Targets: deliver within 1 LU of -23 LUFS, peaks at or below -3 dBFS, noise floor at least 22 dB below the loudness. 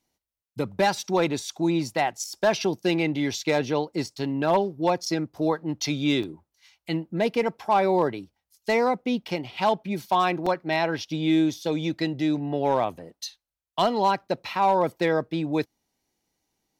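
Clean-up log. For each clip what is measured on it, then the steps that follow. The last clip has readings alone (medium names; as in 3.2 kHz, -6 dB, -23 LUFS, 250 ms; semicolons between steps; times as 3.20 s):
clipped samples 0.2%; clipping level -13.5 dBFS; dropouts 3; longest dropout 4.6 ms; loudness -25.5 LUFS; peak level -13.5 dBFS; loudness target -23.0 LUFS
-> clip repair -13.5 dBFS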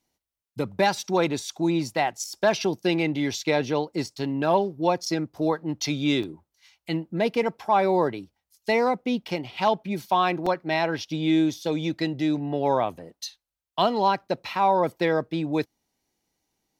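clipped samples 0.0%; dropouts 3; longest dropout 4.6 ms
-> interpolate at 6.23/9.28/10.46 s, 4.6 ms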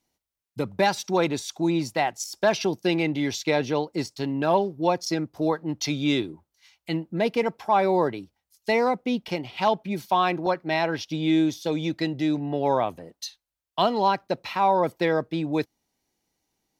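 dropouts 0; loudness -25.5 LUFS; peak level -8.5 dBFS; loudness target -23.0 LUFS
-> trim +2.5 dB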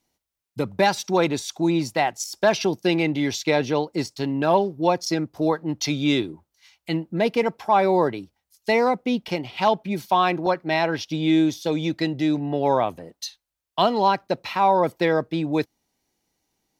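loudness -23.0 LUFS; peak level -6.0 dBFS; noise floor -83 dBFS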